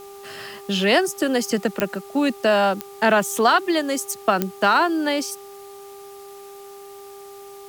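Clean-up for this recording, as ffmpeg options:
ffmpeg -i in.wav -af "adeclick=threshold=4,bandreject=frequency=398.3:width_type=h:width=4,bandreject=frequency=796.6:width_type=h:width=4,bandreject=frequency=1194.9:width_type=h:width=4,agate=range=-21dB:threshold=-33dB" out.wav

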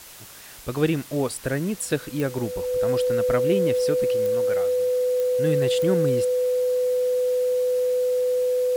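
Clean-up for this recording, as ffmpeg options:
ffmpeg -i in.wav -af "adeclick=threshold=4,bandreject=frequency=500:width=30,afwtdn=0.0071" out.wav

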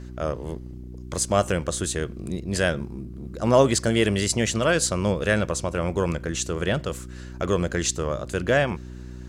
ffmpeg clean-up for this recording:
ffmpeg -i in.wav -af "bandreject=frequency=61.8:width_type=h:width=4,bandreject=frequency=123.6:width_type=h:width=4,bandreject=frequency=185.4:width_type=h:width=4,bandreject=frequency=247.2:width_type=h:width=4,bandreject=frequency=309:width_type=h:width=4,bandreject=frequency=370.8:width_type=h:width=4" out.wav

